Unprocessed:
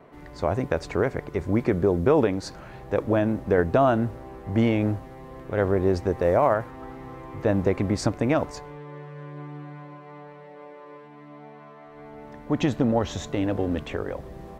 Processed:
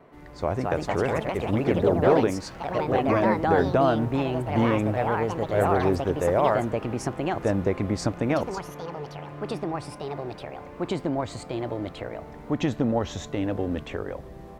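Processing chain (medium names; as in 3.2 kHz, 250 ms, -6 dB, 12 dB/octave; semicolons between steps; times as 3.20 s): ever faster or slower copies 288 ms, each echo +3 st, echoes 3; trim -2 dB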